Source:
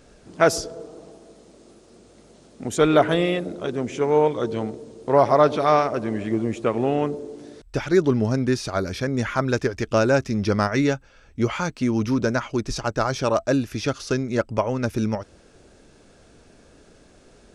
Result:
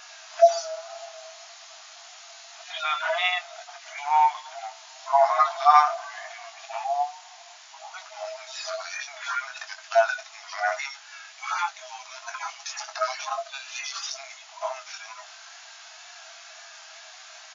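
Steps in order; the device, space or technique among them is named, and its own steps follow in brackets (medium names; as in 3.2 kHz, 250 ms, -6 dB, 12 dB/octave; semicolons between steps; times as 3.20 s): harmonic-percussive separation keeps harmonic; 6.84–7.94 s: steep low-pass 1.1 kHz 96 dB/octave; noise-reduction cassette on a plain deck (tape noise reduction on one side only encoder only; wow and flutter; white noise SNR 25 dB); FFT band-pass 630–7200 Hz; doubling 22 ms -7.5 dB; trim +6 dB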